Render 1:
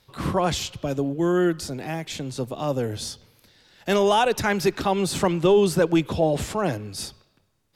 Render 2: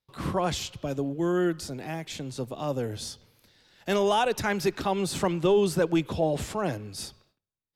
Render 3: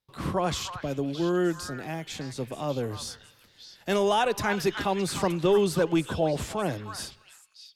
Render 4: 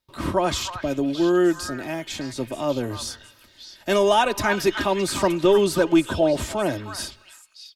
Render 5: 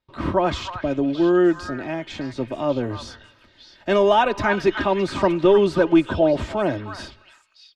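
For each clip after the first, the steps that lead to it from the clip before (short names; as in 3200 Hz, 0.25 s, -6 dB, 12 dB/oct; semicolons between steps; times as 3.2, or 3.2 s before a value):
gate with hold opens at -48 dBFS; gain -4.5 dB
delay with a stepping band-pass 0.308 s, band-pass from 1400 Hz, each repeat 1.4 oct, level -4.5 dB
comb 3.2 ms, depth 52%; gain +4.5 dB
Bessel low-pass 2600 Hz, order 2; gain +2 dB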